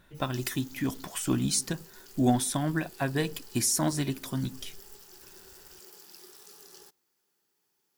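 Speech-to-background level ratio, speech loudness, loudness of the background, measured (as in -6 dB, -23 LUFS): 20.0 dB, -29.5 LUFS, -49.5 LUFS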